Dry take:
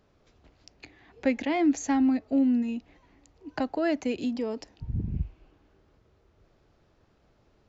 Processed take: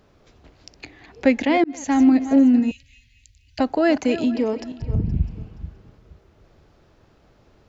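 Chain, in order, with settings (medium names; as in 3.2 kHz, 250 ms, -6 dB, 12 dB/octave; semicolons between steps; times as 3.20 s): backward echo that repeats 236 ms, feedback 44%, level -13 dB; 1.64–2.05 s: fade in; 2.71–3.59 s: inverse Chebyshev band-stop 190–1300 Hz, stop band 40 dB; 4.22–5.24 s: treble shelf 5.8 kHz -11 dB; trim +8.5 dB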